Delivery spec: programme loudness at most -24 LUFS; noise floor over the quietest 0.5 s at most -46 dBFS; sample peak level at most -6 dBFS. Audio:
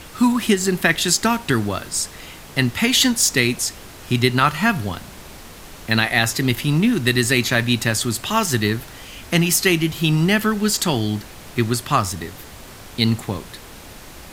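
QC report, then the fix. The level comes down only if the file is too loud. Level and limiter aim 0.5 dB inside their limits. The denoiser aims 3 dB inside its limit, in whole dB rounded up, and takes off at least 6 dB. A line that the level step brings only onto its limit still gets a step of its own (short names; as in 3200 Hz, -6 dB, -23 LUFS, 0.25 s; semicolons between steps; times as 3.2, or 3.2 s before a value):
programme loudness -19.0 LUFS: fail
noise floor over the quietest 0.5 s -39 dBFS: fail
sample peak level -2.0 dBFS: fail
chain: denoiser 6 dB, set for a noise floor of -39 dBFS; gain -5.5 dB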